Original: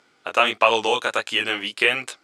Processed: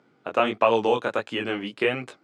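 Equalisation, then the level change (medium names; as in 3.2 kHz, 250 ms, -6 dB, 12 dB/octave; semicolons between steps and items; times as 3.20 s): high-pass 120 Hz 24 dB/octave; tilt EQ -4.5 dB/octave; -3.5 dB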